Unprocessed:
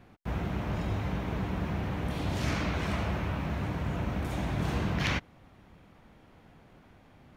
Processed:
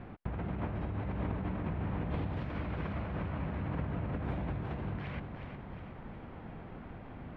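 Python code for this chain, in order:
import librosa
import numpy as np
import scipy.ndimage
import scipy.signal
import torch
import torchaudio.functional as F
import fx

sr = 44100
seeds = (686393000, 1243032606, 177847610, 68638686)

y = fx.over_compress(x, sr, threshold_db=-39.0, ratio=-1.0)
y = fx.air_absorb(y, sr, metres=470.0)
y = fx.echo_feedback(y, sr, ms=361, feedback_pct=52, wet_db=-7.5)
y = y * 10.0 ** (2.5 / 20.0)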